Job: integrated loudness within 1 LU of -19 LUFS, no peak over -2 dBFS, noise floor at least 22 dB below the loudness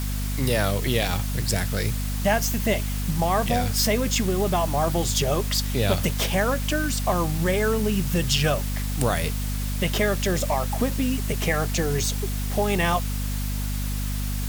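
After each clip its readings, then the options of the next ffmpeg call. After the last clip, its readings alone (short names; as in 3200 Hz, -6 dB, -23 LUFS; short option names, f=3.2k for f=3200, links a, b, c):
hum 50 Hz; harmonics up to 250 Hz; hum level -25 dBFS; noise floor -27 dBFS; noise floor target -46 dBFS; loudness -24.0 LUFS; peak -7.0 dBFS; loudness target -19.0 LUFS
-> -af "bandreject=f=50:t=h:w=4,bandreject=f=100:t=h:w=4,bandreject=f=150:t=h:w=4,bandreject=f=200:t=h:w=4,bandreject=f=250:t=h:w=4"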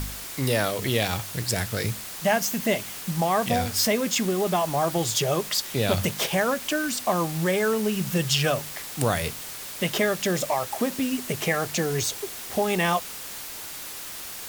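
hum none; noise floor -37 dBFS; noise floor target -48 dBFS
-> -af "afftdn=nr=11:nf=-37"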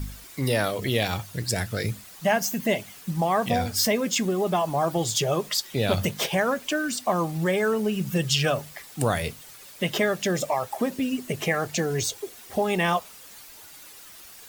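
noise floor -46 dBFS; noise floor target -48 dBFS
-> -af "afftdn=nr=6:nf=-46"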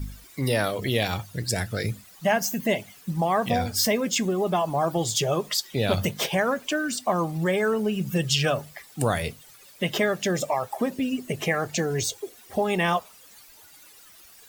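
noise floor -51 dBFS; loudness -25.5 LUFS; peak -9.0 dBFS; loudness target -19.0 LUFS
-> -af "volume=6.5dB"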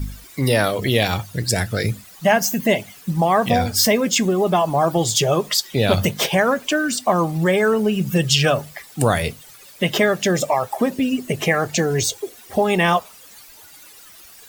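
loudness -19.0 LUFS; peak -2.5 dBFS; noise floor -45 dBFS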